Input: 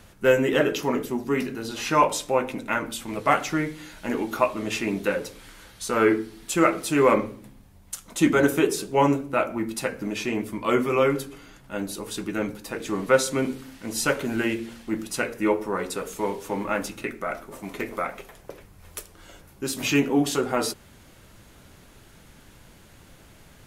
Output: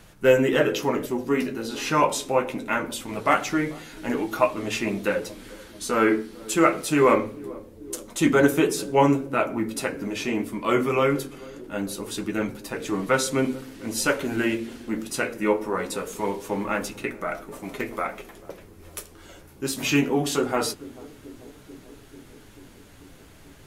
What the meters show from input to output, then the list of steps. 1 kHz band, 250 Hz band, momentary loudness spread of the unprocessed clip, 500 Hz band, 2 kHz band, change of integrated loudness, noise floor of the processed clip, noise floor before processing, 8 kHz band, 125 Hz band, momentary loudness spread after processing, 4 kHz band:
0.0 dB, +0.5 dB, 13 LU, +0.5 dB, +0.5 dB, +0.5 dB, -49 dBFS, -52 dBFS, +0.5 dB, +1.0 dB, 17 LU, +0.5 dB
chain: flange 0.23 Hz, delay 6.2 ms, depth 8.5 ms, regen -43%; band-passed feedback delay 439 ms, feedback 78%, band-pass 320 Hz, level -19 dB; trim +4.5 dB

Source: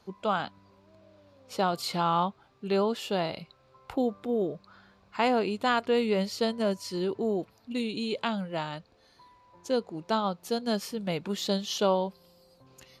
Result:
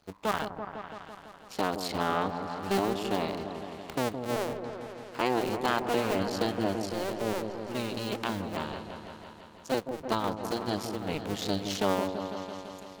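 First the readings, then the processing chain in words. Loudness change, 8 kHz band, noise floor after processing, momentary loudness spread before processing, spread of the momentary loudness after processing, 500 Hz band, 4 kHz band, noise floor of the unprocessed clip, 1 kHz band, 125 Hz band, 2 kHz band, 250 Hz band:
-2.5 dB, +0.5 dB, -50 dBFS, 10 LU, 13 LU, -2.0 dB, -2.0 dB, -63 dBFS, -1.0 dB, 0.0 dB, +0.5 dB, -1.5 dB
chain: cycle switcher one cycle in 2, muted; delay with an opening low-pass 167 ms, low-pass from 750 Hz, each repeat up 1 oct, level -6 dB

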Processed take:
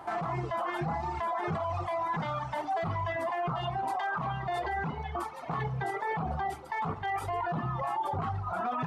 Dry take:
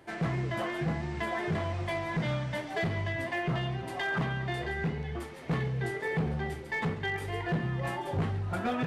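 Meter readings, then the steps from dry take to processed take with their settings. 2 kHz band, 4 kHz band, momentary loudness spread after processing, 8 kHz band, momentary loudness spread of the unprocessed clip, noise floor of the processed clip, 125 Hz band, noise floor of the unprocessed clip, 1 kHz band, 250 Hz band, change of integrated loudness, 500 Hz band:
-4.0 dB, -5.0 dB, 3 LU, no reading, 3 LU, -42 dBFS, -4.5 dB, -42 dBFS, +7.0 dB, -5.5 dB, -0.5 dB, -0.5 dB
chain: reverb removal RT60 1.8 s; high-order bell 960 Hz +15 dB 1.2 oct; in parallel at +2 dB: compressor with a negative ratio -32 dBFS, ratio -1; on the sum: peak limiter -18 dBFS, peak gain reduction 8.5 dB; trim -6.5 dB

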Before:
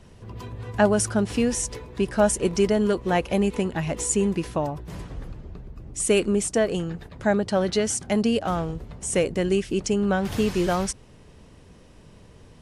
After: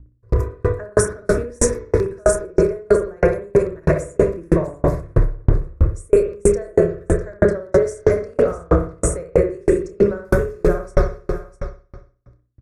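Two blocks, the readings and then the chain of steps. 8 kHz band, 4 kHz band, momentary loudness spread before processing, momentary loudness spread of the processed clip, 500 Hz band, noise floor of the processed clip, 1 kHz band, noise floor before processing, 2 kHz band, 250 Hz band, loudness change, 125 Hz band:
-0.5 dB, no reading, 16 LU, 6 LU, +7.5 dB, -55 dBFS, -0.5 dB, -50 dBFS, +2.0 dB, +1.0 dB, +4.5 dB, +8.5 dB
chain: gate -40 dBFS, range -45 dB; tilt shelf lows +6 dB, about 820 Hz; reverse; compression 5:1, threshold -25 dBFS, peak gain reduction 13.5 dB; reverse; hum 60 Hz, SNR 32 dB; LFO notch square 3 Hz 290–4300 Hz; static phaser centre 810 Hz, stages 6; doubling 29 ms -8.5 dB; on a send: delay 651 ms -15.5 dB; on the sum: spring tank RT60 1.4 s, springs 59 ms, chirp 75 ms, DRR -4 dB; loudness maximiser +23 dB; sawtooth tremolo in dB decaying 3.1 Hz, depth 39 dB

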